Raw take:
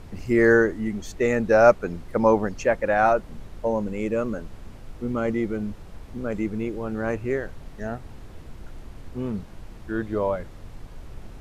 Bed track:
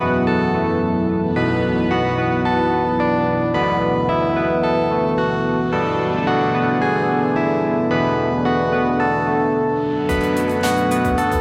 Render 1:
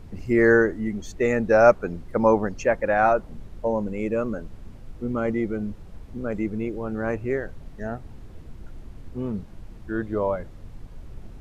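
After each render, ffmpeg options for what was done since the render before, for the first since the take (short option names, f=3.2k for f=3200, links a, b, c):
-af "afftdn=nr=6:nf=-43"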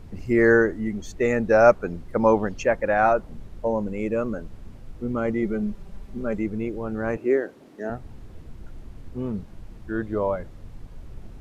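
-filter_complex "[0:a]asettb=1/sr,asplit=3[a][b][c];[a]atrim=end=2.234[d];[b]atrim=start=2.23:end=2.63,asetpts=PTS-STARTPTS,afade=t=in:d=0.004:c=qsin,afade=t=out:st=0.396:d=0.004:c=qsin,equalizer=f=3.2k:w=2.1:g=6[e];[c]atrim=start=2.626[f];[d][e]acrossfade=d=0.004:c1=hsin:c2=qsin[g];[g][f]acrossfade=d=0.004:c1=qsin:c2=hsin,asettb=1/sr,asplit=3[h][i][j];[h]atrim=end=5.424[k];[i]atrim=start=5.42:end=6.35,asetpts=PTS-STARTPTS,afade=t=in:d=0.004:c=qsin,afade=t=out:st=0.926:d=0.004:c=qsin,aecho=1:1:5.1:0.55,atrim=end_sample=41013[l];[j]atrim=start=6.346[m];[k][l]acrossfade=d=0.004:c1=hsin:c2=qsin[n];[n][m]acrossfade=d=0.004:c1=qsin:c2=hsin,asettb=1/sr,asplit=3[o][p][q];[o]atrim=end=7.174[r];[p]atrim=start=7.17:end=7.9,asetpts=PTS-STARTPTS,afade=t=in:d=0.004:c=qsin,afade=t=out:st=0.726:d=0.004:c=qsin,highpass=f=310:t=q:w=2.3[s];[q]atrim=start=7.896[t];[r][s]acrossfade=d=0.004:c1=hsin:c2=qsin[u];[u][t]acrossfade=d=0.004:c1=qsin:c2=hsin"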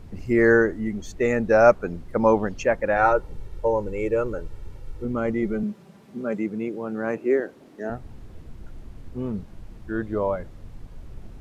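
-filter_complex "[0:a]asettb=1/sr,asplit=3[a][b][c];[a]atrim=end=2.964[d];[b]atrim=start=2.96:end=5.05,asetpts=PTS-STARTPTS,afade=t=in:d=0.004:c=qsin,afade=t=out:st=2.086:d=0.004:c=qsin,aecho=1:1:2.2:0.68,atrim=end_sample=92169[e];[c]atrim=start=5.046[f];[d][e]acrossfade=d=0.004:c1=hsin:c2=qsin[g];[g][f]acrossfade=d=0.004:c1=qsin:c2=hsin,asettb=1/sr,asplit=3[h][i][j];[h]atrim=end=5.634[k];[i]atrim=start=5.63:end=7.4,asetpts=PTS-STARTPTS,afade=t=in:d=0.004:c=qsin,afade=t=out:st=1.766:d=0.004:c=qsin,highpass=f=140:w=0.5412,highpass=f=140:w=1.3066[l];[j]atrim=start=7.396[m];[k][l]acrossfade=d=0.004:c1=hsin:c2=qsin[n];[n][m]acrossfade=d=0.004:c1=qsin:c2=hsin"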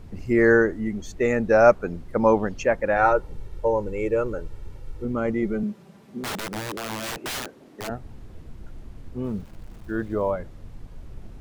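-filter_complex "[0:a]asplit=3[a][b][c];[a]afade=t=out:st=6.2:d=0.02[d];[b]aeval=exprs='(mod(18.8*val(0)+1,2)-1)/18.8':c=same,afade=t=in:st=6.2:d=0.02,afade=t=out:st=7.87:d=0.02[e];[c]afade=t=in:st=7.87:d=0.02[f];[d][e][f]amix=inputs=3:normalize=0,asettb=1/sr,asplit=3[g][h][i];[g]atrim=end=9.244[j];[h]atrim=start=9.24:end=10.32,asetpts=PTS-STARTPTS,afade=t=in:d=0.004:c=qsin,afade=t=out:st=1.076:d=0.004:c=qsin,aeval=exprs='val(0)*gte(abs(val(0)),0.00376)':c=same[k];[i]atrim=start=10.316[l];[j][k]acrossfade=d=0.004:c1=hsin:c2=qsin[m];[m][l]acrossfade=d=0.004:c1=qsin:c2=hsin"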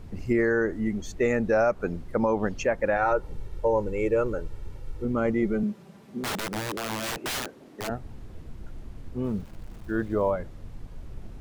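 -af "alimiter=limit=-14dB:level=0:latency=1:release=114"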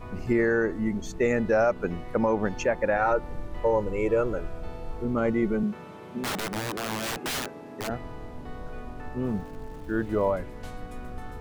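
-filter_complex "[1:a]volume=-25dB[a];[0:a][a]amix=inputs=2:normalize=0"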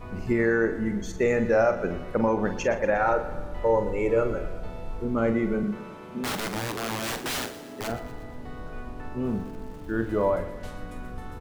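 -filter_complex "[0:a]asplit=2[a][b];[b]adelay=44,volume=-9dB[c];[a][c]amix=inputs=2:normalize=0,aecho=1:1:119|238|357|476|595|714:0.178|0.101|0.0578|0.0329|0.0188|0.0107"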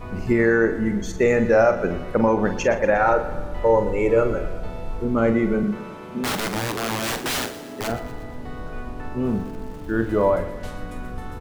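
-af "volume=5dB"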